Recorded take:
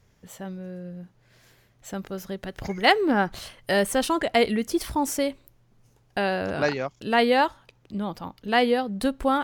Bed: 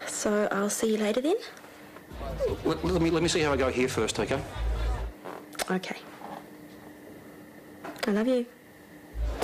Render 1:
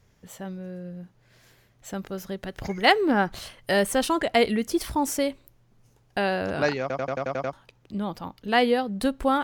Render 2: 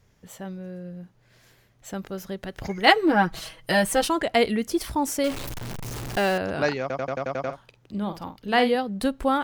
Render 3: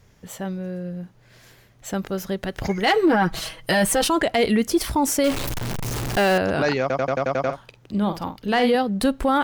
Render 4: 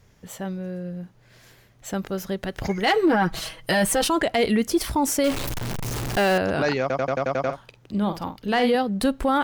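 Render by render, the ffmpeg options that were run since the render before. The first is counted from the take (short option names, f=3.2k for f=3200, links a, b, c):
-filter_complex "[0:a]asplit=9[a][b][c][d][e][f][g][h][i];[a]atrim=end=6.902[j];[b]atrim=start=6.808:end=6.902[k];[c]atrim=start=6.808:end=6.902[l];[d]atrim=start=6.808:end=6.902[m];[e]atrim=start=6.808:end=6.902[n];[f]atrim=start=6.808:end=6.902[o];[g]atrim=start=6.808:end=6.902[p];[h]atrim=start=6.808:end=6.902[q];[i]atrim=start=7.528[r];[j][k]acrossfade=d=0.004:c1=hsin:c2=hsin[s];[s][l]acrossfade=d=0.004:c1=hsin:c2=hsin[t];[t][m]acrossfade=d=0.004:c1=hsin:c2=hsin[u];[u][n]acrossfade=d=0.004:c1=hsin:c2=hsin[v];[v][o]acrossfade=d=0.004:c1=hsin:c2=hsin[w];[w][p]acrossfade=d=0.004:c1=hsin:c2=hsin[x];[x][q]acrossfade=d=0.004:c1=hsin:c2=hsin[y];[y][r]acrossfade=d=0.004:c1=hsin:c2=hsin"
-filter_complex "[0:a]asettb=1/sr,asplit=3[a][b][c];[a]atrim=end=2.864[d];[b]atrim=start=2.86:end=4.08,asetpts=PTS-STARTPTS,afade=t=in:d=0.004:c=qsin,afade=t=out:st=1.216:d=0.004:c=qsin,aecho=1:1:6.2:0.81,atrim=end_sample=53802[e];[c]atrim=start=4.076[f];[d][e]acrossfade=d=0.004:c1=hsin:c2=qsin[g];[g][f]acrossfade=d=0.004:c1=qsin:c2=hsin,asettb=1/sr,asplit=3[h][i][j];[h]atrim=end=5.244[k];[i]atrim=start=5.24:end=6.38,asetpts=PTS-STARTPTS,afade=t=in:d=0.004:c=qsin,afade=t=out:st=1.136:d=0.004:c=qsin,aeval=exprs='val(0)+0.5*0.0422*sgn(val(0))':c=same[l];[j]atrim=start=6.376[m];[k][l]acrossfade=d=0.004:c1=hsin:c2=qsin[n];[n][m]acrossfade=d=0.004:c1=qsin:c2=hsin,asettb=1/sr,asplit=3[o][p][q];[o]atrim=end=7.404[r];[p]atrim=start=7.4:end=8.75,asetpts=PTS-STARTPTS,afade=t=in:d=0.004:c=qsin,afade=t=out:st=1.346:d=0.004:c=qsin,asplit=2[s][t];[t]adelay=49,volume=-9.5dB[u];[s][u]amix=inputs=2:normalize=0,atrim=end_sample=59535[v];[q]atrim=start=8.746[w];[r][v]acrossfade=d=0.004:c1=hsin:c2=qsin[x];[x][w]acrossfade=d=0.004:c1=qsin:c2=hsin"
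-af "acontrast=70,alimiter=limit=-11dB:level=0:latency=1:release=15"
-af "volume=-1.5dB"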